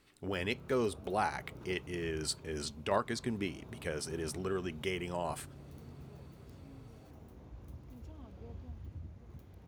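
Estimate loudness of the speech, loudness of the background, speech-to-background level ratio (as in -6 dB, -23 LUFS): -37.0 LUFS, -52.0 LUFS, 15.0 dB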